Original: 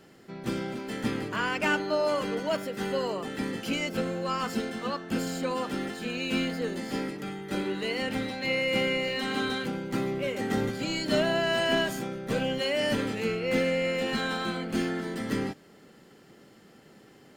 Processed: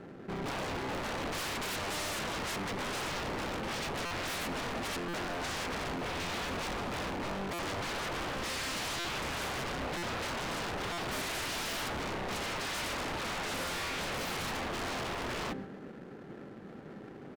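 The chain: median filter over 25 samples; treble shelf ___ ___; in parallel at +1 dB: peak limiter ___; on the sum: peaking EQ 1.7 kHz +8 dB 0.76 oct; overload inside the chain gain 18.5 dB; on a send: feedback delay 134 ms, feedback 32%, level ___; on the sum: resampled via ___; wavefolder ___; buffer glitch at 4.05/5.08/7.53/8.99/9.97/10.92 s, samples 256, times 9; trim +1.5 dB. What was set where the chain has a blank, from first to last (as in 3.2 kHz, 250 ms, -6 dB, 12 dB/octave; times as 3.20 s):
6.6 kHz, -11.5 dB, -26.5 dBFS, -18 dB, 32 kHz, -33 dBFS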